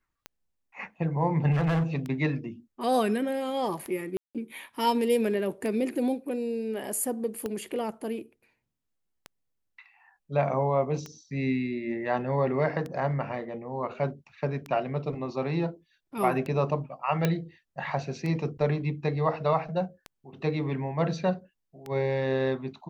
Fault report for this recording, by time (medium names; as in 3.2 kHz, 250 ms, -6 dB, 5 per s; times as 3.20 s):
tick 33 1/3 rpm -22 dBFS
1.51–1.83 s: clipped -22 dBFS
4.17–4.35 s: dropout 177 ms
7.46 s: pop
17.25 s: pop -11 dBFS